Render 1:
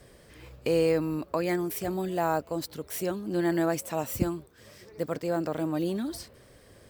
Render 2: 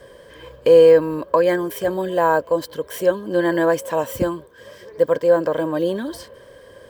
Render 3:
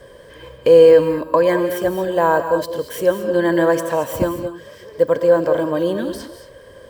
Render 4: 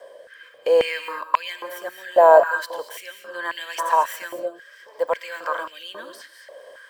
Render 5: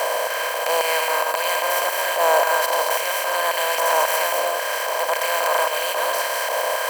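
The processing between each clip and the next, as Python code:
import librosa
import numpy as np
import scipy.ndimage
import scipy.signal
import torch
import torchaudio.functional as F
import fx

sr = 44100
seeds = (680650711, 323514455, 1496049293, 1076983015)

y1 = fx.small_body(x, sr, hz=(530.0, 1000.0, 1600.0, 3100.0), ring_ms=25, db=16)
y1 = y1 * 10.0 ** (1.5 / 20.0)
y2 = fx.low_shelf(y1, sr, hz=120.0, db=4.0)
y2 = fx.rev_gated(y2, sr, seeds[0], gate_ms=250, shape='rising', drr_db=8.0)
y2 = y2 * 10.0 ** (1.0 / 20.0)
y3 = fx.rotary(y2, sr, hz=0.7)
y3 = fx.filter_held_highpass(y3, sr, hz=3.7, low_hz=650.0, high_hz=2700.0)
y3 = y3 * 10.0 ** (-2.0 / 20.0)
y4 = fx.bin_compress(y3, sr, power=0.2)
y4 = fx.transient(y4, sr, attack_db=-8, sustain_db=-4)
y4 = fx.tilt_eq(y4, sr, slope=4.0)
y4 = y4 * 10.0 ** (-7.0 / 20.0)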